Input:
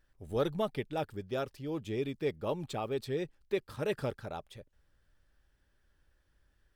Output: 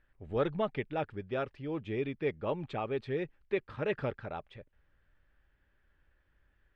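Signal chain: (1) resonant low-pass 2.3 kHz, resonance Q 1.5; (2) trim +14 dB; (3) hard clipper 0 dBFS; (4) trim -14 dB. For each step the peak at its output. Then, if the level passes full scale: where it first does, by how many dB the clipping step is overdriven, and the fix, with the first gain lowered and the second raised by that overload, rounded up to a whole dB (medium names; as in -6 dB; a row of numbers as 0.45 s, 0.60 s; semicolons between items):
-18.5 dBFS, -4.5 dBFS, -4.5 dBFS, -18.5 dBFS; nothing clips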